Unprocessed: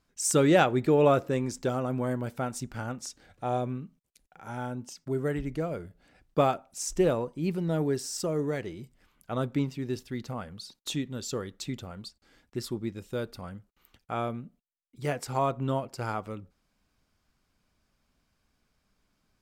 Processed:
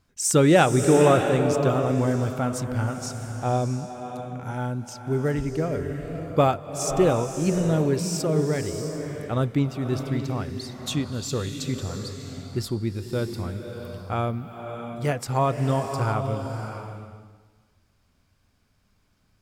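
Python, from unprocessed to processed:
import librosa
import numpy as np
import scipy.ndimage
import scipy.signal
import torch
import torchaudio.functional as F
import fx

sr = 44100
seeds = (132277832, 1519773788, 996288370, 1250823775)

y = fx.peak_eq(x, sr, hz=97.0, db=9.5, octaves=0.79)
y = fx.rev_bloom(y, sr, seeds[0], attack_ms=660, drr_db=5.5)
y = F.gain(torch.from_numpy(y), 4.0).numpy()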